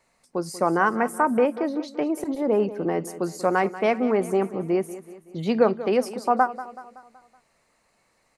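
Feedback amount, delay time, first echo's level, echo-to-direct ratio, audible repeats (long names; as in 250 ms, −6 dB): 50%, 188 ms, −15.0 dB, −13.5 dB, 4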